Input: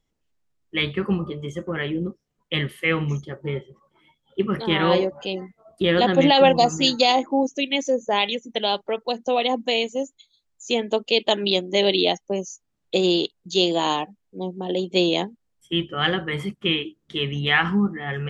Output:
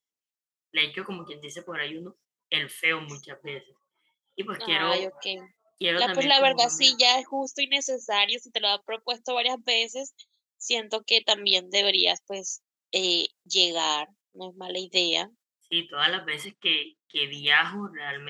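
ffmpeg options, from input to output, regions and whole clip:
-filter_complex "[0:a]asettb=1/sr,asplit=3[a][b][c];[a]atrim=end=16.454[d];[b]atrim=start=16.45:end=17.17,asetpts=PTS-STARTPTS,afade=t=in:d=0.004:c=qsin,afade=t=out:st=0.716:d=0.004:c=qsin,agate=range=-10dB:threshold=-57dB:ratio=16:release=100:detection=peak,highpass=170,lowpass=4.7k[e];[c]atrim=start=17.166[f];[d][e]acrossfade=d=0.004:c1=hsin:c2=qsin[g];[g][f]acrossfade=d=0.004:c1=qsin:c2=hsin,agate=range=-12dB:threshold=-46dB:ratio=16:detection=peak,highpass=f=1k:p=1,highshelf=f=4.1k:g=9.5,volume=-1.5dB"

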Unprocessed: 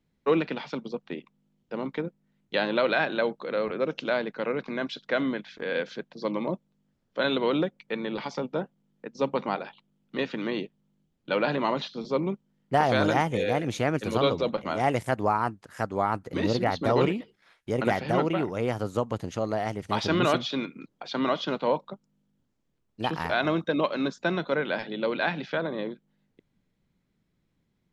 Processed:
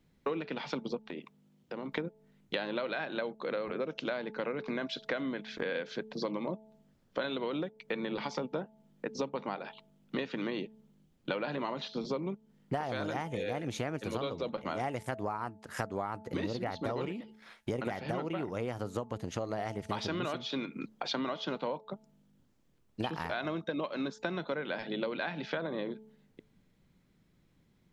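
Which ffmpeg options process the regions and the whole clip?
-filter_complex "[0:a]asettb=1/sr,asplit=3[a][b][c];[a]atrim=end=1.104[d];[b]atrim=start=1.1:end=1.92,asetpts=PTS-STARTPTS,afade=t=in:d=0.004:c=qsin,afade=t=out:st=0.816:d=0.004:c=qsin,highpass=91,acompressor=threshold=-42dB:ratio=5:attack=3.2:release=140:knee=1:detection=peak[e];[c]atrim=start=1.916[f];[d][e]acrossfade=d=0.004:c1=hsin:c2=qsin[g];[g][f]acrossfade=d=0.004:c1=qsin:c2=hsin,bandreject=f=217.3:t=h:w=4,bandreject=f=434.6:t=h:w=4,bandreject=f=651.9:t=h:w=4,bandreject=f=869.2:t=h:w=4,acompressor=threshold=-37dB:ratio=12,volume=5.5dB"

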